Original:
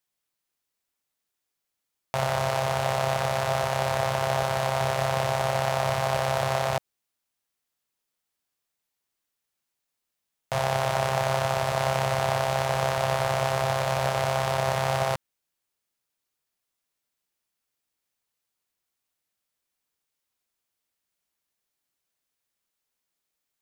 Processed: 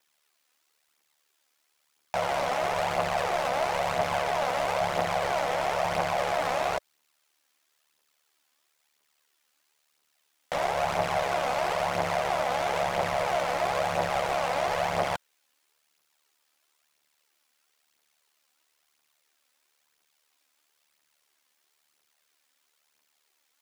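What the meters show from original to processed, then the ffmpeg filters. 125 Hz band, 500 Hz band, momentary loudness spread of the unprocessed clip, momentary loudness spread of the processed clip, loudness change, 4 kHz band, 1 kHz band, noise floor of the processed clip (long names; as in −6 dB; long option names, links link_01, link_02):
−12.0 dB, −1.5 dB, 2 LU, 2 LU, −2.0 dB, −3.0 dB, −0.5 dB, −74 dBFS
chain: -filter_complex "[0:a]alimiter=limit=-19dB:level=0:latency=1,aeval=exprs='val(0)*sin(2*PI*37*n/s)':channel_layout=same,asplit=2[link_01][link_02];[link_02]highpass=frequency=720:poles=1,volume=25dB,asoftclip=type=tanh:threshold=-15dB[link_03];[link_01][link_03]amix=inputs=2:normalize=0,lowpass=frequency=5600:poles=1,volume=-6dB,aphaser=in_gain=1:out_gain=1:delay=4.1:decay=0.44:speed=1:type=triangular,volume=-2.5dB"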